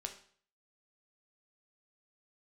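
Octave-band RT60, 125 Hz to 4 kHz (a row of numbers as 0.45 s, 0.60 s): 0.60 s, 0.50 s, 0.50 s, 0.50 s, 0.50 s, 0.50 s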